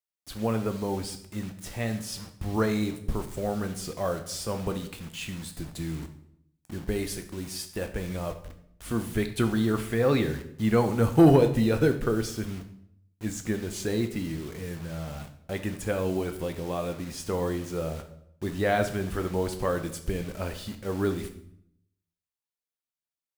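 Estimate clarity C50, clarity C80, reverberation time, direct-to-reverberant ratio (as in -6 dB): 11.0 dB, 14.0 dB, 0.70 s, 6.5 dB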